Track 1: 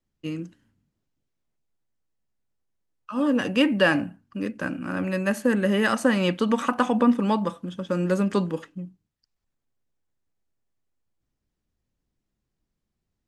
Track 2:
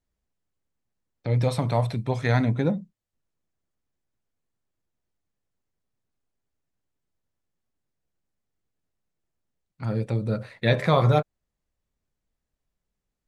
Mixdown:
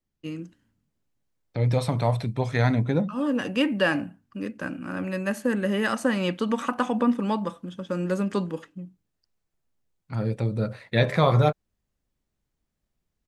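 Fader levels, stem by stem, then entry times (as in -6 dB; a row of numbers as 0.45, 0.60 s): -3.0, 0.0 dB; 0.00, 0.30 s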